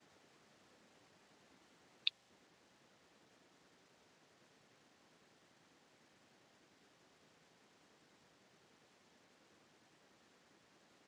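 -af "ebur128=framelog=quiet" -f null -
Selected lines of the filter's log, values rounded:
Integrated loudness:
  I:         -41.0 LUFS
  Threshold: -65.1 LUFS
Loudness range:
  LRA:        19.1 LU
  Threshold: -75.4 LUFS
  LRA low:   -68.8 LUFS
  LRA high:  -49.7 LUFS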